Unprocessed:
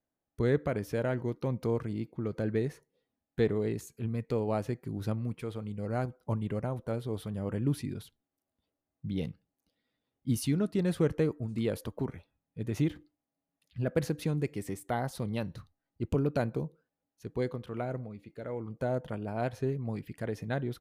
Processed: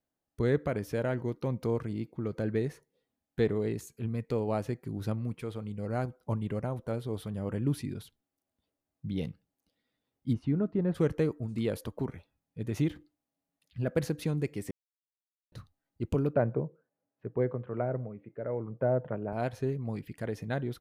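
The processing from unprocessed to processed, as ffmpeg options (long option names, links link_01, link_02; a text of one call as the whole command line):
ffmpeg -i in.wav -filter_complex "[0:a]asplit=3[link_01][link_02][link_03];[link_01]afade=type=out:start_time=10.32:duration=0.02[link_04];[link_02]lowpass=1300,afade=type=in:start_time=10.32:duration=0.02,afade=type=out:start_time=10.94:duration=0.02[link_05];[link_03]afade=type=in:start_time=10.94:duration=0.02[link_06];[link_04][link_05][link_06]amix=inputs=3:normalize=0,asettb=1/sr,asplit=3[link_07][link_08][link_09];[link_07]atrim=end=16.334[link_10];[link_08]atrim=start=16.33:end=19.33,asetpts=PTS-STARTPTS,afade=type=in:duration=0.004:curve=qsin,afade=type=out:start_time=2.996:duration=0.004:curve=qsin,highpass=120,equalizer=frequency=120:width_type=q:width=4:gain=7,equalizer=frequency=410:width_type=q:width=4:gain=4,equalizer=frequency=590:width_type=q:width=4:gain=6,lowpass=frequency=2000:width=0.5412,lowpass=frequency=2000:width=1.3066[link_11];[link_09]atrim=start=19.326[link_12];[link_10][link_11]acrossfade=duration=0.004:curve1=hsin:curve2=qsin[link_13];[link_13][link_12]acrossfade=duration=0.004:curve1=qsin:curve2=hsin,asplit=3[link_14][link_15][link_16];[link_14]atrim=end=14.71,asetpts=PTS-STARTPTS,afade=type=out:start_time=14.706:duration=0.004:curve=hsin[link_17];[link_15]atrim=start=14.71:end=15.52,asetpts=PTS-STARTPTS,volume=0[link_18];[link_16]atrim=start=15.52,asetpts=PTS-STARTPTS,afade=type=in:duration=0.004:curve=hsin[link_19];[link_17][link_18][link_19]concat=n=3:v=0:a=1" out.wav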